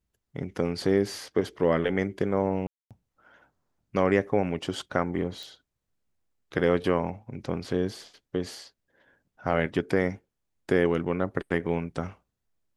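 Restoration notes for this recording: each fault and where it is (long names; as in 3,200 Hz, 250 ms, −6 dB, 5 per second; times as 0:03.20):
0:02.67–0:02.91: drop-out 237 ms
0:05.43: click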